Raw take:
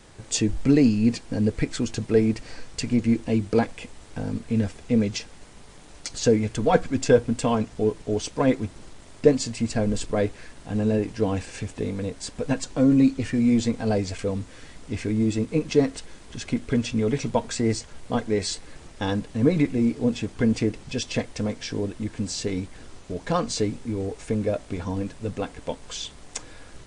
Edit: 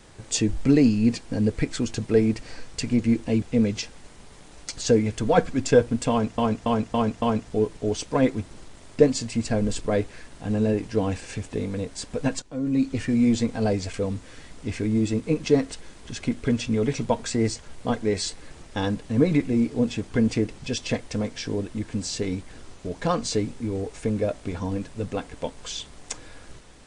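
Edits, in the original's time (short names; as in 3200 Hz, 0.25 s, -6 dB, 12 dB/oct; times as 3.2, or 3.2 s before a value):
3.42–4.79 cut
7.47–7.75 loop, 5 plays
12.67–13.18 fade in quadratic, from -13.5 dB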